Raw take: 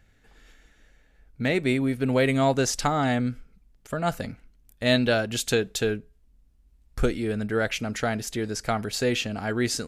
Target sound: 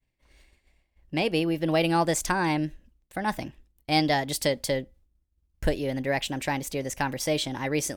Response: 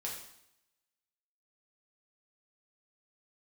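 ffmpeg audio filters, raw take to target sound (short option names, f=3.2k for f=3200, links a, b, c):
-af "asetrate=54684,aresample=44100,agate=range=-33dB:threshold=-49dB:ratio=3:detection=peak,volume=-1.5dB"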